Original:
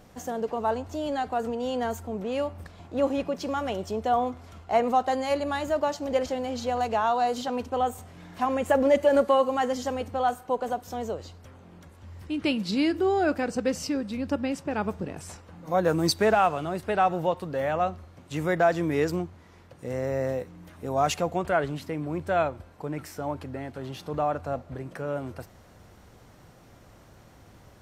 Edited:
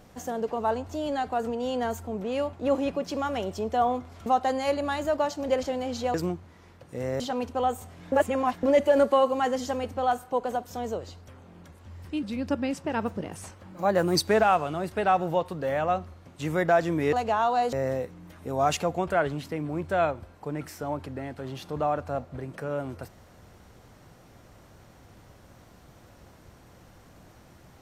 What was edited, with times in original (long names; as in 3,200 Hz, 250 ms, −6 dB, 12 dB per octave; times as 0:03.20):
0:02.53–0:02.85: remove
0:04.58–0:04.89: remove
0:06.77–0:07.37: swap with 0:19.04–0:20.10
0:08.29–0:08.80: reverse
0:12.40–0:14.04: remove
0:14.67–0:16.07: play speed 108%